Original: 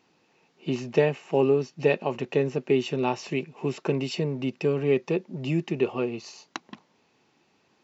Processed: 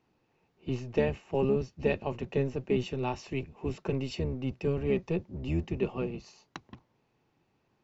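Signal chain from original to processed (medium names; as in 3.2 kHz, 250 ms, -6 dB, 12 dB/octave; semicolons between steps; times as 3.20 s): octave divider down 1 oct, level 0 dB; tape noise reduction on one side only decoder only; trim -6.5 dB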